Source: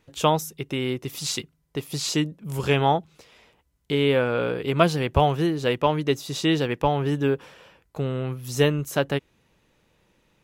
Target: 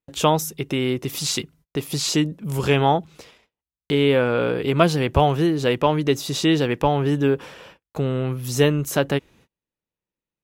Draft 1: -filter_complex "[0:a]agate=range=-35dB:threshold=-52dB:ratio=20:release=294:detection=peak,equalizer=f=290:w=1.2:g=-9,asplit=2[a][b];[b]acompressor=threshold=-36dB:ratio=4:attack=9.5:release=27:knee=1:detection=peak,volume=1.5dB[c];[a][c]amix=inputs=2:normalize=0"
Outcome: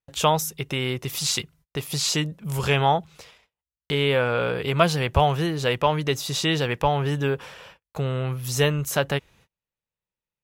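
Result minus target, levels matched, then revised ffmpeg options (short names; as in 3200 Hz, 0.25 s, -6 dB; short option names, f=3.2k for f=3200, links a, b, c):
250 Hz band -4.5 dB
-filter_complex "[0:a]agate=range=-35dB:threshold=-52dB:ratio=20:release=294:detection=peak,equalizer=f=290:w=1.2:g=2,asplit=2[a][b];[b]acompressor=threshold=-36dB:ratio=4:attack=9.5:release=27:knee=1:detection=peak,volume=1.5dB[c];[a][c]amix=inputs=2:normalize=0"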